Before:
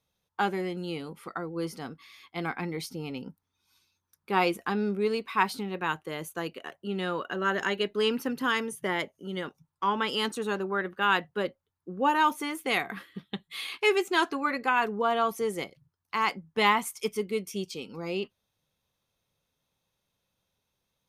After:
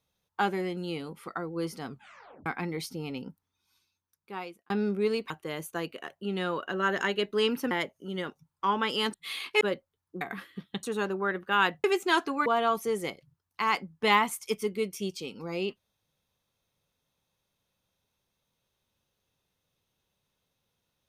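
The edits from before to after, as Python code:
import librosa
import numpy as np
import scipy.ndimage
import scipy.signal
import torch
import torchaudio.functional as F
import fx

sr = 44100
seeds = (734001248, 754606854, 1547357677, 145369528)

y = fx.edit(x, sr, fx.tape_stop(start_s=1.87, length_s=0.59),
    fx.fade_out_span(start_s=3.24, length_s=1.46),
    fx.cut(start_s=5.3, length_s=0.62),
    fx.cut(start_s=8.33, length_s=0.57),
    fx.swap(start_s=10.33, length_s=1.01, other_s=13.42, other_length_s=0.47),
    fx.cut(start_s=11.94, length_s=0.86),
    fx.cut(start_s=14.51, length_s=0.49), tone=tone)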